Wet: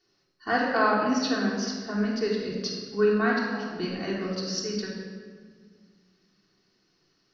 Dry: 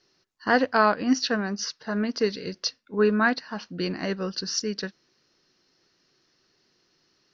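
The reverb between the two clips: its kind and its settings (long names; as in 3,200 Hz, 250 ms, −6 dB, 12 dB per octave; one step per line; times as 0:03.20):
rectangular room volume 2,200 cubic metres, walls mixed, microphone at 3.4 metres
level −7.5 dB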